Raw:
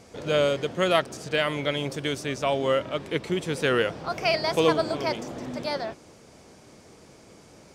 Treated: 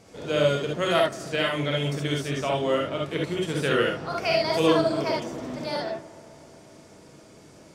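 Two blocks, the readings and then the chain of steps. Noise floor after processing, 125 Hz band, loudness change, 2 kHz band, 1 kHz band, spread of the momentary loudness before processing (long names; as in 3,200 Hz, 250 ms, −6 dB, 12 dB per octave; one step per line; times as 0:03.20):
−51 dBFS, +3.5 dB, +0.5 dB, 0.0 dB, +0.5 dB, 8 LU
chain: bucket-brigade delay 132 ms, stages 2,048, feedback 79%, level −21 dB
reverb whose tail is shaped and stops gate 90 ms rising, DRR −1 dB
level −3.5 dB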